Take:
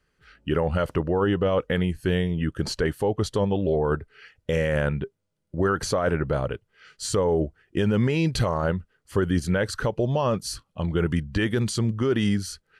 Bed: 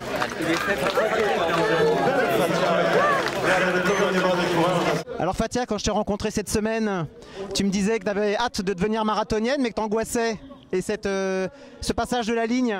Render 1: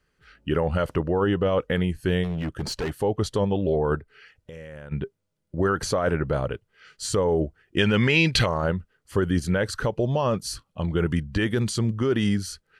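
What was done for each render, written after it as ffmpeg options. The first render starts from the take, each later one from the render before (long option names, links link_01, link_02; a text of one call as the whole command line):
ffmpeg -i in.wav -filter_complex "[0:a]asplit=3[link_01][link_02][link_03];[link_01]afade=type=out:start_time=2.23:duration=0.02[link_04];[link_02]asoftclip=type=hard:threshold=-24.5dB,afade=type=in:start_time=2.23:duration=0.02,afade=type=out:start_time=2.92:duration=0.02[link_05];[link_03]afade=type=in:start_time=2.92:duration=0.02[link_06];[link_04][link_05][link_06]amix=inputs=3:normalize=0,asplit=3[link_07][link_08][link_09];[link_07]afade=type=out:start_time=4:duration=0.02[link_10];[link_08]acompressor=threshold=-46dB:ratio=2.5:attack=3.2:release=140:knee=1:detection=peak,afade=type=in:start_time=4:duration=0.02,afade=type=out:start_time=4.91:duration=0.02[link_11];[link_09]afade=type=in:start_time=4.91:duration=0.02[link_12];[link_10][link_11][link_12]amix=inputs=3:normalize=0,asettb=1/sr,asplit=3[link_13][link_14][link_15];[link_13]atrim=end=7.784[link_16];[link_14]atrim=start=7.78:end=8.46,asetpts=PTS-STARTPTS,afade=type=in:duration=0.004:curve=qsin,afade=type=out:start_time=0.676:duration=0.004:curve=qsin,equalizer=frequency=2600:width=0.6:gain=12.5[link_17];[link_15]atrim=start=8.456[link_18];[link_16][link_17]acrossfade=duration=0.004:curve1=hsin:curve2=qsin[link_19];[link_19][link_18]acrossfade=duration=0.004:curve1=qsin:curve2=hsin" out.wav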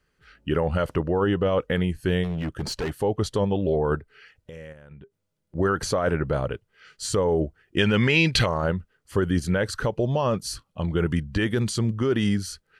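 ffmpeg -i in.wav -filter_complex "[0:a]asettb=1/sr,asplit=3[link_01][link_02][link_03];[link_01]atrim=end=4.724[link_04];[link_02]atrim=start=4.72:end=5.55,asetpts=PTS-STARTPTS,afade=type=in:duration=0.004:curve=qsin,afade=type=out:start_time=0.826:duration=0.004:curve=qsin,acompressor=threshold=-44dB:ratio=5:attack=3.2:release=140:knee=1:detection=peak[link_05];[link_03]atrim=start=5.546[link_06];[link_04][link_05]acrossfade=duration=0.004:curve1=hsin:curve2=qsin[link_07];[link_07][link_06]acrossfade=duration=0.004:curve1=qsin:curve2=hsin" out.wav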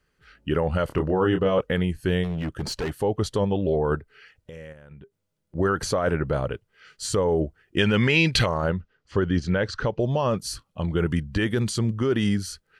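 ffmpeg -i in.wav -filter_complex "[0:a]asettb=1/sr,asplit=3[link_01][link_02][link_03];[link_01]atrim=end=0.874[link_04];[link_02]atrim=start=0.87:end=1.61,asetpts=PTS-STARTPTS,afade=type=in:duration=0.004:curve=qsin,afade=type=out:start_time=0.736:duration=0.004:curve=qsin,asplit=2[link_05][link_06];[link_06]adelay=27,volume=-5.5dB[link_07];[link_05][link_07]amix=inputs=2:normalize=0,atrim=end_sample=32634[link_08];[link_03]atrim=start=1.606[link_09];[link_04][link_08]acrossfade=duration=0.004:curve1=hsin:curve2=qsin[link_10];[link_10][link_09]acrossfade=duration=0.004:curve1=qsin:curve2=hsin,asettb=1/sr,asplit=3[link_11][link_12][link_13];[link_11]atrim=end=8.704[link_14];[link_12]atrim=start=8.7:end=10,asetpts=PTS-STARTPTS,afade=type=in:duration=0.004:curve=qsin,afade=type=out:start_time=1.296:duration=0.004:curve=qsin,lowpass=frequency=5800:width=0.5412,lowpass=frequency=5800:width=1.3066[link_15];[link_13]atrim=start=9.996[link_16];[link_14][link_15]acrossfade=duration=0.004:curve1=hsin:curve2=qsin[link_17];[link_17][link_16]acrossfade=duration=0.004:curve1=qsin:curve2=hsin" out.wav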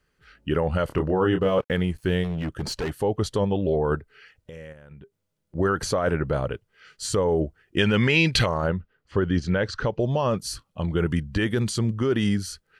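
ffmpeg -i in.wav -filter_complex "[0:a]asettb=1/sr,asplit=3[link_01][link_02][link_03];[link_01]atrim=end=1.414[link_04];[link_02]atrim=start=1.41:end=2.25,asetpts=PTS-STARTPTS,afade=type=in:duration=0.004:curve=qsin,afade=type=out:start_time=0.836:duration=0.004:curve=qsin,aeval=exprs='sgn(val(0))*max(abs(val(0))-0.00251,0)':channel_layout=same[link_05];[link_03]atrim=start=2.246[link_06];[link_04][link_05]acrossfade=duration=0.004:curve1=hsin:curve2=qsin[link_07];[link_07][link_06]acrossfade=duration=0.004:curve1=qsin:curve2=hsin,asettb=1/sr,asplit=3[link_08][link_09][link_10];[link_08]atrim=end=8.674[link_11];[link_09]atrim=start=8.67:end=9.25,asetpts=PTS-STARTPTS,afade=type=in:duration=0.004:curve=qsin,afade=type=out:start_time=0.576:duration=0.004:curve=qsin,equalizer=frequency=6100:width=0.9:gain=-7[link_12];[link_10]atrim=start=9.246[link_13];[link_11][link_12]acrossfade=duration=0.004:curve1=hsin:curve2=qsin[link_14];[link_14][link_13]acrossfade=duration=0.004:curve1=qsin:curve2=hsin" out.wav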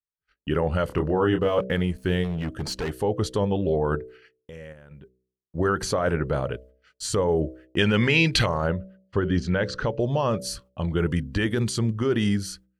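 ffmpeg -i in.wav -af "agate=range=-35dB:threshold=-48dB:ratio=16:detection=peak,bandreject=frequency=63.38:width_type=h:width=4,bandreject=frequency=126.76:width_type=h:width=4,bandreject=frequency=190.14:width_type=h:width=4,bandreject=frequency=253.52:width_type=h:width=4,bandreject=frequency=316.9:width_type=h:width=4,bandreject=frequency=380.28:width_type=h:width=4,bandreject=frequency=443.66:width_type=h:width=4,bandreject=frequency=507.04:width_type=h:width=4,bandreject=frequency=570.42:width_type=h:width=4,bandreject=frequency=633.8:width_type=h:width=4" out.wav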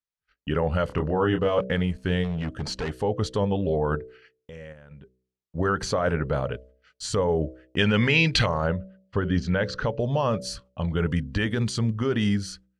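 ffmpeg -i in.wav -af "lowpass=7000,equalizer=frequency=350:width=7.1:gain=-9.5" out.wav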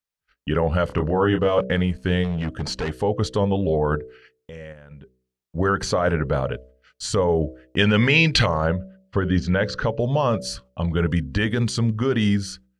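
ffmpeg -i in.wav -af "volume=3.5dB" out.wav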